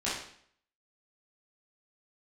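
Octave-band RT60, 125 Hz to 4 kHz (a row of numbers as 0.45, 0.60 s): 0.60, 0.65, 0.60, 0.60, 0.60, 0.55 s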